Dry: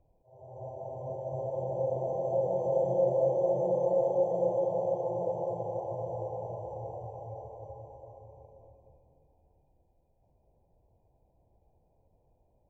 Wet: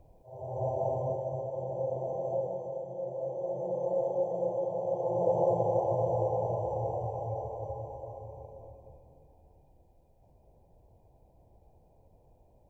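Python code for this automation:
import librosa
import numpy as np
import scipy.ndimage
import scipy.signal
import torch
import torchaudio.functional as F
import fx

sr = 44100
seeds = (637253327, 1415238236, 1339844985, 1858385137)

y = fx.gain(x, sr, db=fx.line((0.88, 10.0), (1.47, -2.0), (2.33, -2.0), (2.87, -12.0), (3.95, -3.0), (4.81, -3.0), (5.4, 7.0)))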